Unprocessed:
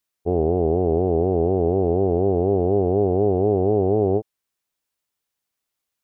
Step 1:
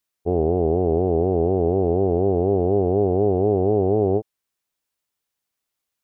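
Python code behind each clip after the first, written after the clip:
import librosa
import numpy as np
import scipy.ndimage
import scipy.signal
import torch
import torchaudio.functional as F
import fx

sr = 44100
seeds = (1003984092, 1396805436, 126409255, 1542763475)

y = x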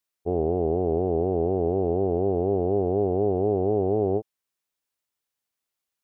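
y = fx.low_shelf(x, sr, hz=190.0, db=-3.0)
y = y * librosa.db_to_amplitude(-3.5)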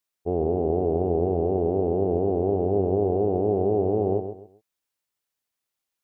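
y = fx.echo_feedback(x, sr, ms=132, feedback_pct=27, wet_db=-9)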